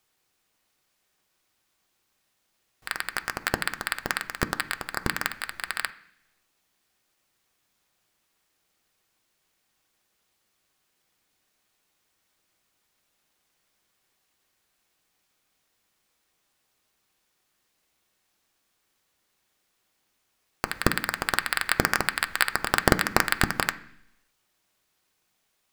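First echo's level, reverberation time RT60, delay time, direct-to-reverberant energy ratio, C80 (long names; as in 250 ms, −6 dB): no echo audible, 0.70 s, no echo audible, 8.5 dB, 20.0 dB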